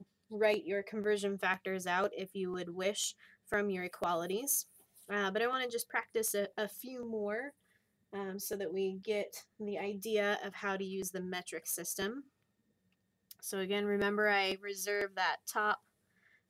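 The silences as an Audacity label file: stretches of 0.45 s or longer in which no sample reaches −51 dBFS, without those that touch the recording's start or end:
7.500000	8.130000	silence
12.210000	13.310000	silence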